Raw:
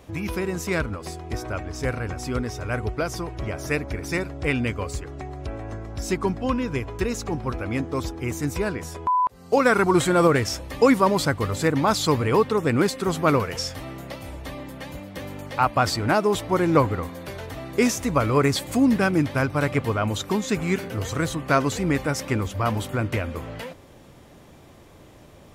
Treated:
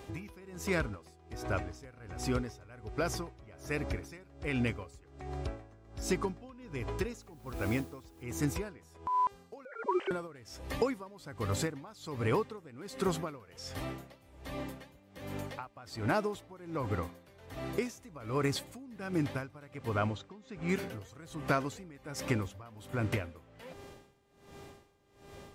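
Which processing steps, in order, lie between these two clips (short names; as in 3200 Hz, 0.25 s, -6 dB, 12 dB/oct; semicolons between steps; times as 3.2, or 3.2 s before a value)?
9.65–10.11 sine-wave speech; compressor 6:1, threshold -23 dBFS, peak gain reduction 11.5 dB; 7.21–8.23 requantised 8-bit, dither triangular; 20.07–20.69 air absorption 130 m; buzz 400 Hz, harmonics 22, -51 dBFS -6 dB/oct; dB-linear tremolo 1.3 Hz, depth 22 dB; gain -2.5 dB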